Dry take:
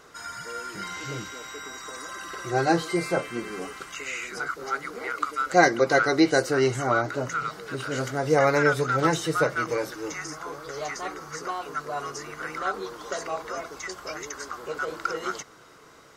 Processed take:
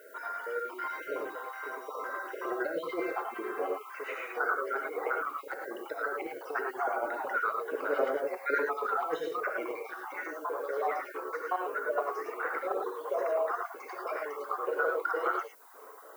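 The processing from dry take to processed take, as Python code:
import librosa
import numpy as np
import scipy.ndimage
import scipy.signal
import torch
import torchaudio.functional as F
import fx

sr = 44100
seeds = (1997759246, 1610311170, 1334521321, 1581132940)

y = fx.spec_dropout(x, sr, seeds[0], share_pct=40)
y = scipy.signal.sosfilt(scipy.signal.butter(4, 440.0, 'highpass', fs=sr, output='sos'), y)
y = fx.dereverb_blind(y, sr, rt60_s=0.91)
y = scipy.signal.sosfilt(scipy.signal.butter(2, 1100.0, 'lowpass', fs=sr, output='sos'), y)
y = fx.over_compress(y, sr, threshold_db=-34.0, ratio=-0.5)
y = fx.dmg_noise_colour(y, sr, seeds[1], colour='violet', level_db=-64.0)
y = fx.rev_gated(y, sr, seeds[2], gate_ms=130, shape='rising', drr_db=1.5)
y = y * 10.0 ** (2.5 / 20.0)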